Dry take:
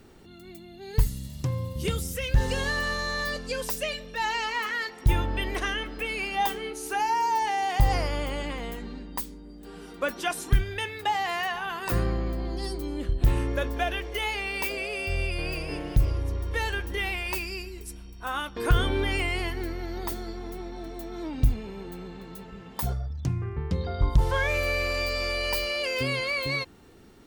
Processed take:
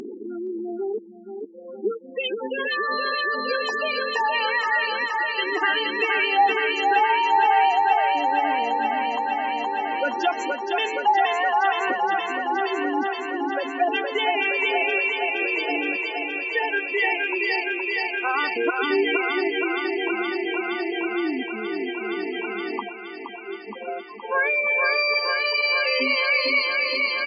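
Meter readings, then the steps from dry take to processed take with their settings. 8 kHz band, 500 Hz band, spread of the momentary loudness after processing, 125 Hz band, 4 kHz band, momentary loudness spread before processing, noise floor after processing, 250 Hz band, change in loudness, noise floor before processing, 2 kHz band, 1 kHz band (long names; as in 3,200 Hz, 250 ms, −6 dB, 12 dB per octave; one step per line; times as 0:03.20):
below −10 dB, +7.0 dB, 11 LU, below −30 dB, +5.5 dB, 13 LU, −38 dBFS, +5.0 dB, +6.0 dB, −46 dBFS, +9.0 dB, +9.5 dB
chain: gate on every frequency bin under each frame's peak −10 dB strong
comb filter 2.6 ms, depth 42%
feedback echo with a high-pass in the loop 469 ms, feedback 83%, high-pass 290 Hz, level −3.5 dB
upward compression, threshold −26 dBFS
brick-wall band-pass 200–7,400 Hz
level +6 dB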